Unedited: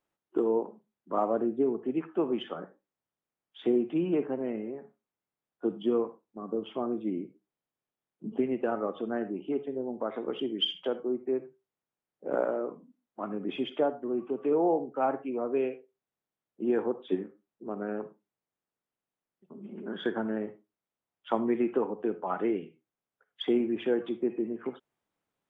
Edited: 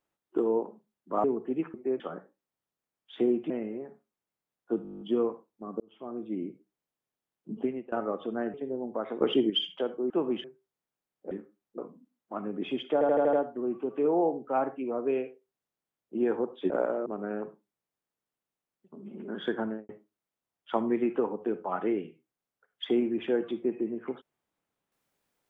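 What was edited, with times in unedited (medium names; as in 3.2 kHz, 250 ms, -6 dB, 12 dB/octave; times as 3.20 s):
1.24–1.62 s: delete
2.12–2.46 s: swap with 11.16–11.42 s
3.96–4.43 s: delete
5.76 s: stutter 0.02 s, 10 plays
6.55–7.23 s: fade in
8.34–8.67 s: fade out, to -23 dB
9.29–9.60 s: delete
10.27–10.56 s: gain +8 dB
12.29–12.65 s: swap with 17.17–17.64 s
13.80 s: stutter 0.08 s, 6 plays
20.22–20.47 s: studio fade out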